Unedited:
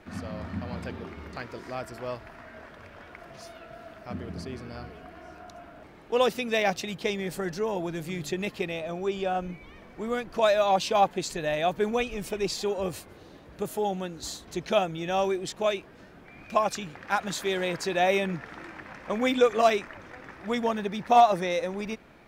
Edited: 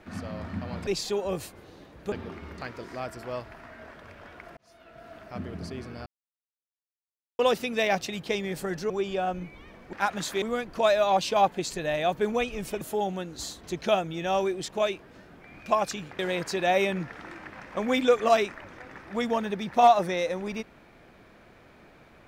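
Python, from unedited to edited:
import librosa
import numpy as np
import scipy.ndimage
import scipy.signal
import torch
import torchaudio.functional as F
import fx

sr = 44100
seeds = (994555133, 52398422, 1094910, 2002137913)

y = fx.edit(x, sr, fx.fade_in_span(start_s=3.32, length_s=0.61),
    fx.silence(start_s=4.81, length_s=1.33),
    fx.cut(start_s=7.65, length_s=1.33),
    fx.move(start_s=12.4, length_s=1.25, to_s=0.87),
    fx.move(start_s=17.03, length_s=0.49, to_s=10.01), tone=tone)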